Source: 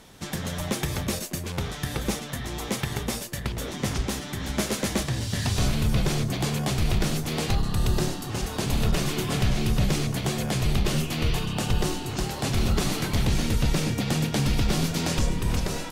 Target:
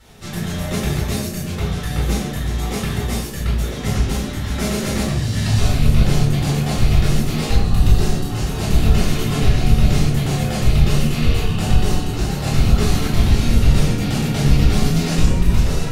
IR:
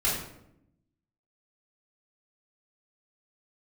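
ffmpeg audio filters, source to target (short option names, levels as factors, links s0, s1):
-filter_complex "[1:a]atrim=start_sample=2205[s0];[0:a][s0]afir=irnorm=-1:irlink=0,volume=0.501"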